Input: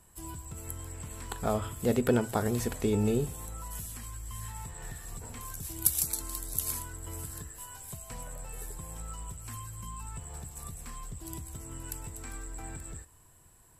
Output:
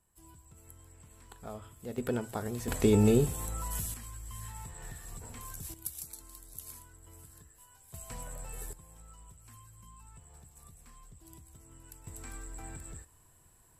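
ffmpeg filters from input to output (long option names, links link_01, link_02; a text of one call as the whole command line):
ffmpeg -i in.wav -af "asetnsamples=nb_out_samples=441:pad=0,asendcmd='1.98 volume volume -7dB;2.68 volume volume 4dB;3.94 volume volume -3dB;5.74 volume volume -13.5dB;7.94 volume volume -1dB;8.73 volume volume -12.5dB;12.07 volume volume -3dB',volume=-14dB" out.wav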